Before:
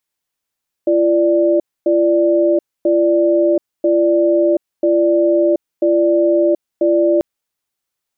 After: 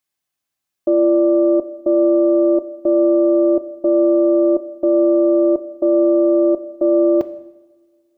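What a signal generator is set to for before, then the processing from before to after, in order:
cadence 341 Hz, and 589 Hz, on 0.73 s, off 0.26 s, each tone -13 dBFS 6.34 s
tracing distortion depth 0.082 ms; comb of notches 470 Hz; two-slope reverb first 0.9 s, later 2.7 s, from -20 dB, DRR 12 dB

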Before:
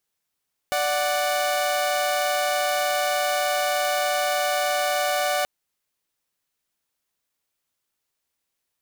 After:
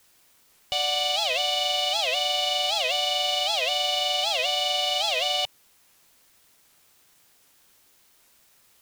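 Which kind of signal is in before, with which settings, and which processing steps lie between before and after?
chord D5/F#5 saw, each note -21.5 dBFS 4.73 s
FFT filter 120 Hz 0 dB, 270 Hz -18 dB, 930 Hz -1 dB, 1.5 kHz -23 dB, 3 kHz +10 dB, 11 kHz -12 dB; word length cut 10-bit, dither triangular; warped record 78 rpm, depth 250 cents

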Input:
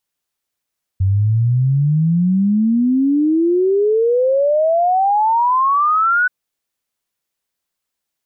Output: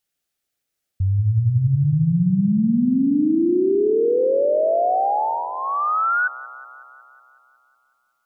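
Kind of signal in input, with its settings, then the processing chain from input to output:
log sweep 93 Hz -> 1.5 kHz 5.28 s -11.5 dBFS
peak limiter -15.5 dBFS; peaking EQ 1 kHz -14 dB 0.21 oct; feedback echo behind a low-pass 184 ms, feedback 65%, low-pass 830 Hz, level -8 dB

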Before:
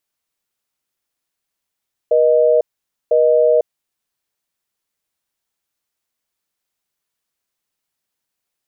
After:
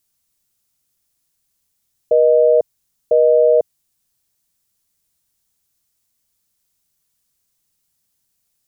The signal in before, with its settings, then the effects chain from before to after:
call progress tone busy tone, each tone -12.5 dBFS 1.82 s
tone controls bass +13 dB, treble +11 dB

